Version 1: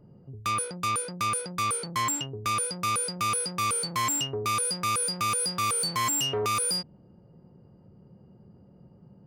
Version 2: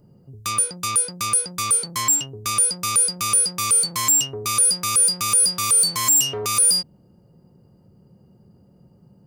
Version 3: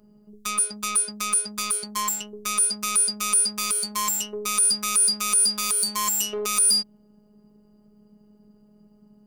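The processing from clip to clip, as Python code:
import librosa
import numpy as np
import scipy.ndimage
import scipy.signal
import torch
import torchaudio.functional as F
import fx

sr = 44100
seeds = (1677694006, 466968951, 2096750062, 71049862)

y1 = fx.bass_treble(x, sr, bass_db=1, treble_db=13)
y2 = fx.robotise(y1, sr, hz=209.0)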